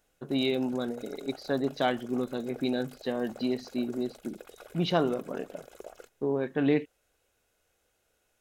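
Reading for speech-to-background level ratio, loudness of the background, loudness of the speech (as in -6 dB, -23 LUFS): 19.0 dB, -50.0 LUFS, -31.0 LUFS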